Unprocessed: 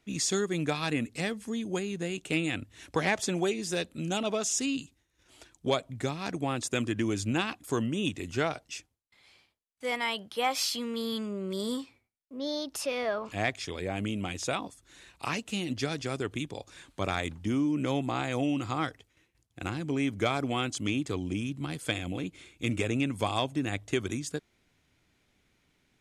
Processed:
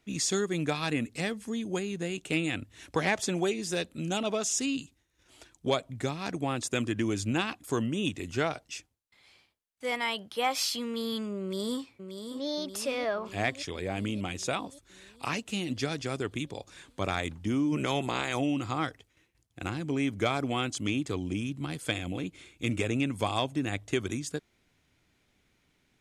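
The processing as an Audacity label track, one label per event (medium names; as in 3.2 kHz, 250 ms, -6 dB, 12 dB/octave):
11.410000	12.460000	echo throw 580 ms, feedback 65%, level -8 dB
17.710000	18.380000	spectral peaks clipped ceiling under each frame's peak by 13 dB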